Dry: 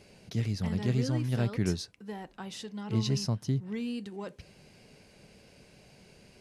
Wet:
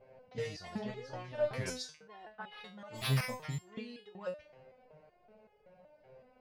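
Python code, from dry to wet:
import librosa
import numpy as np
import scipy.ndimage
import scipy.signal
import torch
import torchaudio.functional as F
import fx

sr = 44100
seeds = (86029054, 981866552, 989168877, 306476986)

p1 = fx.bessel_lowpass(x, sr, hz=2500.0, order=2, at=(0.8, 1.53))
p2 = fx.resample_bad(p1, sr, factor=6, down='none', up='hold', at=(2.5, 3.7))
p3 = fx.low_shelf_res(p2, sr, hz=430.0, db=-7.0, q=3.0)
p4 = np.clip(p3, -10.0 ** (-29.5 / 20.0), 10.0 ** (-29.5 / 20.0))
p5 = p3 + (p4 * 10.0 ** (-5.5 / 20.0))
p6 = fx.env_lowpass(p5, sr, base_hz=910.0, full_db=-27.5)
p7 = fx.resonator_held(p6, sr, hz=5.3, low_hz=130.0, high_hz=420.0)
y = p7 * 10.0 ** (8.0 / 20.0)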